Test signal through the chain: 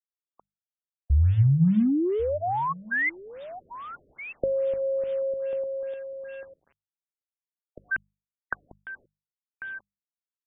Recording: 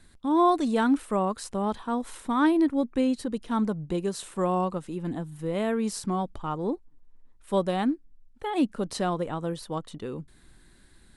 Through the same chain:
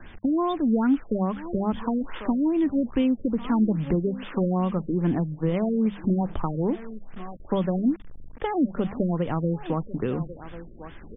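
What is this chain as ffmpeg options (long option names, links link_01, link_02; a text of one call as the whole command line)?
ffmpeg -i in.wav -filter_complex "[0:a]asplit=2[link_01][link_02];[link_02]acompressor=threshold=-32dB:ratio=16,volume=-1.5dB[link_03];[link_01][link_03]amix=inputs=2:normalize=0,aexciter=amount=13.5:drive=2.6:freq=7200,asplit=2[link_04][link_05];[link_05]aecho=0:1:1093:0.0944[link_06];[link_04][link_06]amix=inputs=2:normalize=0,acrossover=split=210|3000[link_07][link_08][link_09];[link_08]acompressor=threshold=-33dB:ratio=6[link_10];[link_07][link_10][link_09]amix=inputs=3:normalize=0,acrusher=bits=7:mix=0:aa=0.000001,bandreject=frequency=50:width_type=h:width=6,bandreject=frequency=100:width_type=h:width=6,bandreject=frequency=150:width_type=h:width=6,bandreject=frequency=200:width_type=h:width=6,afftfilt=real='re*lt(b*sr/1024,590*pow(3700/590,0.5+0.5*sin(2*PI*2.4*pts/sr)))':imag='im*lt(b*sr/1024,590*pow(3700/590,0.5+0.5*sin(2*PI*2.4*pts/sr)))':win_size=1024:overlap=0.75,volume=7dB" out.wav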